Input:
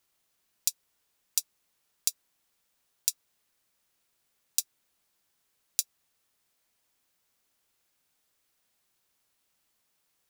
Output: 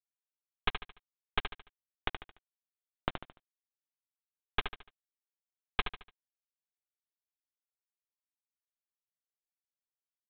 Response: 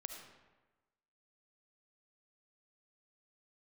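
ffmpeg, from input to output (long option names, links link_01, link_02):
-filter_complex "[0:a]asettb=1/sr,asplit=3[link_01][link_02][link_03];[link_01]atrim=end=1.404[link_04];[link_02]atrim=start=1.4:end=3.1,asetpts=PTS-STARTPTS,afade=type=in:duration=0.004:curve=qsin,afade=type=out:start_time=1.696:duration=0.004:curve=qsin,aemphasis=mode=reproduction:type=bsi[link_05];[link_03]atrim=start=3.096[link_06];[link_04][link_05]acrossfade=duration=0.004:curve1=hsin:curve2=qsin[link_07];[link_07][link_06]acrossfade=duration=0.004:curve1=qsin:curve2=hsin,afwtdn=0.00708,alimiter=limit=-13dB:level=0:latency=1:release=11,asoftclip=type=tanh:threshold=-19.5dB,acrusher=bits=5:dc=4:mix=0:aa=0.000001,asuperpass=centerf=2300:order=4:qfactor=0.52,aeval=exprs='abs(val(0))':channel_layout=same,asplit=2[link_08][link_09];[link_09]aecho=0:1:73|146|219|292:0.398|0.151|0.0575|0.0218[link_10];[link_08][link_10]amix=inputs=2:normalize=0,crystalizer=i=3.5:c=0,aresample=8000,aresample=44100,volume=12dB"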